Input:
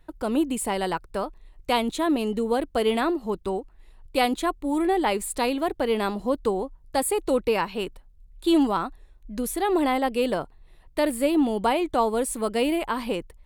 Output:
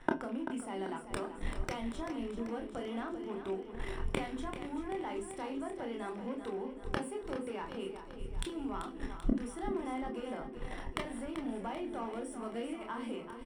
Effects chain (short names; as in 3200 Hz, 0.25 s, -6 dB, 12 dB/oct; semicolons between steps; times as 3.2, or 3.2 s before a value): rattling part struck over -30 dBFS, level -26 dBFS; steep low-pass 10000 Hz 96 dB/oct; high shelf 5200 Hz +6.5 dB; notches 50/100/150/200/250/300/350/400/450/500 Hz; sample leveller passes 2; compressor 6:1, threshold -26 dBFS, peak gain reduction 12 dB; flipped gate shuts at -27 dBFS, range -27 dB; resonator 130 Hz, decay 0.59 s, harmonics all, mix 50%; feedback echo 0.388 s, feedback 56%, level -9.5 dB; reverb RT60 0.20 s, pre-delay 24 ms, DRR 3.5 dB; gain +8.5 dB